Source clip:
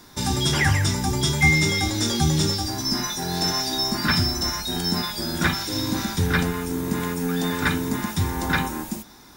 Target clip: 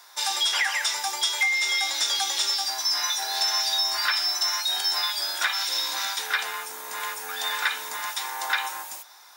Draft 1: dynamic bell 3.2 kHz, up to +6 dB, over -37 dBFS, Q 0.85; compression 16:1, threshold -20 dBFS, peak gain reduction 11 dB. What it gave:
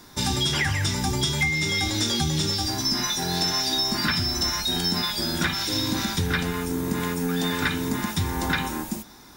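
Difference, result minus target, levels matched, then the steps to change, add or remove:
500 Hz band +11.5 dB
add after dynamic bell: high-pass 680 Hz 24 dB/octave

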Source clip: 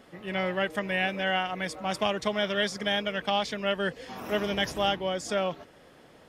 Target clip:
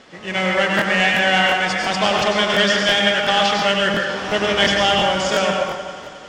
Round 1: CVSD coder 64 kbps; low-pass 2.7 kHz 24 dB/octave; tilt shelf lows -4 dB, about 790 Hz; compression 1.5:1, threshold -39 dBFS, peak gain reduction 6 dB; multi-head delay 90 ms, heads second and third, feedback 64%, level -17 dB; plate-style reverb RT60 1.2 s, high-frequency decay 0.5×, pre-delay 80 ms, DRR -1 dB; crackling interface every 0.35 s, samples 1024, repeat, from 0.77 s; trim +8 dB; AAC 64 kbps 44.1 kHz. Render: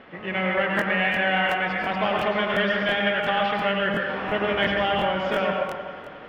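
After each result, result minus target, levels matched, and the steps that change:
8 kHz band -19.0 dB; compression: peak gain reduction +6 dB
change: low-pass 6.8 kHz 24 dB/octave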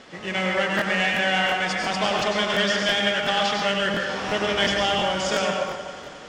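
compression: peak gain reduction +6.5 dB
remove: compression 1.5:1, threshold -39 dBFS, peak gain reduction 6.5 dB

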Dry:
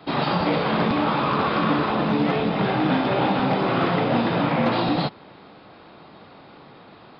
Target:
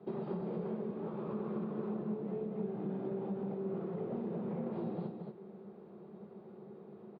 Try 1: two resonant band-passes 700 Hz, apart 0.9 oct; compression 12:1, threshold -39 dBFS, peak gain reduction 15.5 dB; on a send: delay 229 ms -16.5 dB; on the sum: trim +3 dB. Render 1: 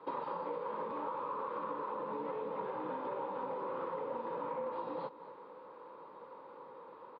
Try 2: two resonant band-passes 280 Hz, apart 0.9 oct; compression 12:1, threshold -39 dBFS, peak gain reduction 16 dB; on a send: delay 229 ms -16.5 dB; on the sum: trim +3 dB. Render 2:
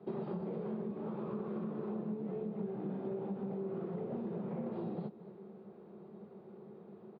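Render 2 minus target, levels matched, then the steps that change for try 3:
echo-to-direct -11 dB
change: delay 229 ms -5.5 dB

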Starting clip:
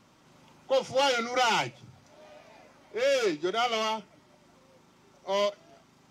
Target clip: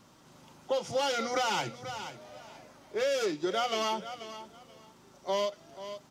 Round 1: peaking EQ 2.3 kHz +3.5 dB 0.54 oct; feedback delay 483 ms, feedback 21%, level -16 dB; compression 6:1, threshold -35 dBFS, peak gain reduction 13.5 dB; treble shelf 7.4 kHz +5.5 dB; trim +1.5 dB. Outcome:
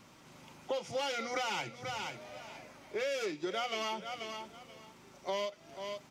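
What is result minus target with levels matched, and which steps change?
compression: peak gain reduction +6 dB; 2 kHz band +3.5 dB
change: peaking EQ 2.3 kHz -4 dB 0.54 oct; change: compression 6:1, threshold -28 dBFS, peak gain reduction 7.5 dB

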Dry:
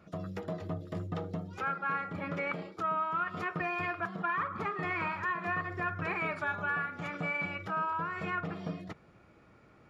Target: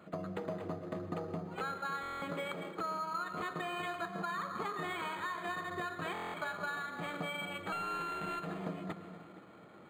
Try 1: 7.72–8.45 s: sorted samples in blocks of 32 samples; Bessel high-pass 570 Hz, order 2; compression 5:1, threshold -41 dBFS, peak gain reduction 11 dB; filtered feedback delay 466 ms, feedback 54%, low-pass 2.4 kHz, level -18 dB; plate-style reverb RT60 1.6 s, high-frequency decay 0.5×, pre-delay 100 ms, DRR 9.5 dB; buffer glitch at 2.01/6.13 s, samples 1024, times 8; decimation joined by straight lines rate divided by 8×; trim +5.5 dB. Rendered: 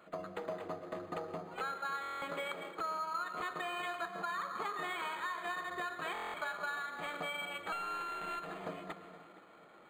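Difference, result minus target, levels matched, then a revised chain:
250 Hz band -6.5 dB
7.72–8.45 s: sorted samples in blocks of 32 samples; Bessel high-pass 230 Hz, order 2; compression 5:1, threshold -41 dBFS, peak gain reduction 11.5 dB; filtered feedback delay 466 ms, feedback 54%, low-pass 2.4 kHz, level -18 dB; plate-style reverb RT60 1.6 s, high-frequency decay 0.5×, pre-delay 100 ms, DRR 9.5 dB; buffer glitch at 2.01/6.13 s, samples 1024, times 8; decimation joined by straight lines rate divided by 8×; trim +5.5 dB

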